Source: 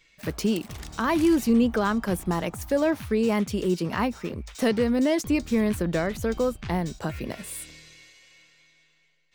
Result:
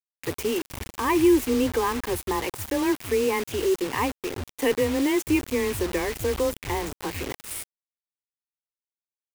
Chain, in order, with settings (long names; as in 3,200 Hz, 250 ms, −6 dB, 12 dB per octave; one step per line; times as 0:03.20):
phaser with its sweep stopped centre 930 Hz, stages 8
frequency shifter +16 Hz
bit-depth reduction 6 bits, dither none
level +3.5 dB